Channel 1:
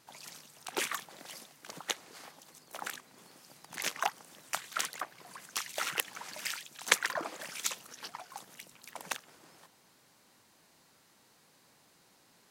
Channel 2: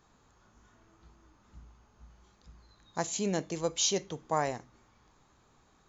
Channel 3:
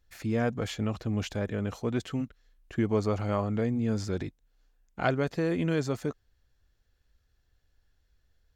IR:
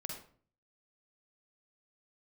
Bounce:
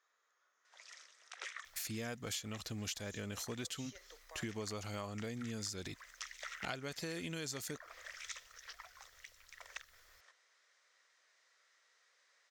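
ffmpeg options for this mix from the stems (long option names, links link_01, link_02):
-filter_complex "[0:a]adelay=650,volume=-12dB[link_01];[1:a]alimiter=level_in=2dB:limit=-24dB:level=0:latency=1,volume=-2dB,volume=-16dB[link_02];[2:a]highshelf=frequency=2700:gain=12,adelay=1650,volume=-5.5dB[link_03];[link_01][link_02]amix=inputs=2:normalize=0,highpass=frequency=500:width=0.5412,highpass=frequency=500:width=1.3066,equalizer=frequency=510:width_type=q:width=4:gain=3,equalizer=frequency=840:width_type=q:width=4:gain=-9,equalizer=frequency=1300:width_type=q:width=4:gain=5,equalizer=frequency=1900:width_type=q:width=4:gain=9,equalizer=frequency=2800:width_type=q:width=4:gain=-4,equalizer=frequency=4400:width_type=q:width=4:gain=-7,lowpass=frequency=5900:width=0.5412,lowpass=frequency=5900:width=1.3066,acompressor=threshold=-49dB:ratio=2.5,volume=0dB[link_04];[link_03][link_04]amix=inputs=2:normalize=0,highshelf=frequency=2400:gain=12,acompressor=threshold=-40dB:ratio=5"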